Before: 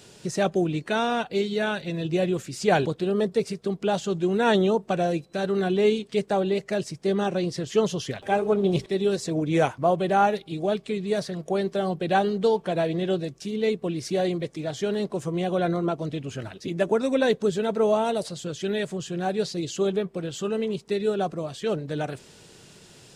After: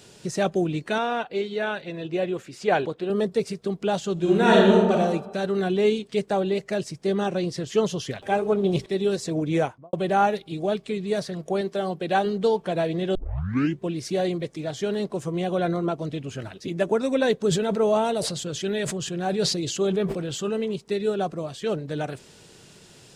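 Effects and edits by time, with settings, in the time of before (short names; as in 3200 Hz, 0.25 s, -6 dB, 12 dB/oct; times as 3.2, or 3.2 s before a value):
0.98–3.1 tone controls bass -9 dB, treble -10 dB
4.13–4.92 reverb throw, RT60 1.1 s, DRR -3 dB
9.49–9.93 studio fade out
11.61–12.26 low shelf 120 Hz -10.5 dB
13.15 tape start 0.73 s
17.37–20.61 sustainer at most 38 dB/s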